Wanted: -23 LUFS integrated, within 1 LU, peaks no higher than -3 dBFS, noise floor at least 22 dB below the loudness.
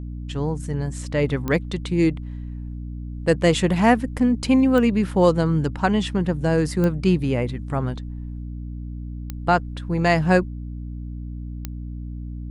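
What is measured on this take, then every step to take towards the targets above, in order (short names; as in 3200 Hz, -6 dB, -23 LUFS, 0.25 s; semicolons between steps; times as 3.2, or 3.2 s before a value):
clicks 5; hum 60 Hz; harmonics up to 300 Hz; hum level -30 dBFS; loudness -21.5 LUFS; peak -3.5 dBFS; loudness target -23.0 LUFS
-> de-click; notches 60/120/180/240/300 Hz; gain -1.5 dB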